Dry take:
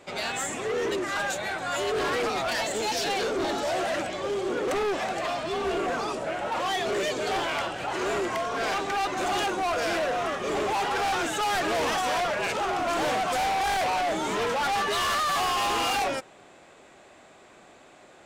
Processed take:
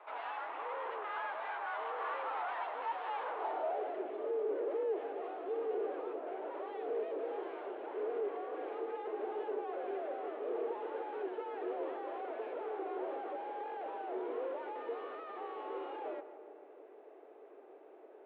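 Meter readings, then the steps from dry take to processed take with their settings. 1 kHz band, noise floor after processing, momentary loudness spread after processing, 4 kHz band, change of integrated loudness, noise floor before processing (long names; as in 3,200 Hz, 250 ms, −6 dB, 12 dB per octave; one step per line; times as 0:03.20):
−13.5 dB, −56 dBFS, 8 LU, below −25 dB, −12.5 dB, −53 dBFS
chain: stylus tracing distortion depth 0.2 ms
asymmetric clip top −47.5 dBFS, bottom −29 dBFS
single-sideband voice off tune +54 Hz 250–3,400 Hz
feedback echo with a low-pass in the loop 152 ms, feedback 68%, low-pass 2,200 Hz, level −12 dB
band-pass filter sweep 1,000 Hz → 400 Hz, 0:03.33–0:03.99
level +3.5 dB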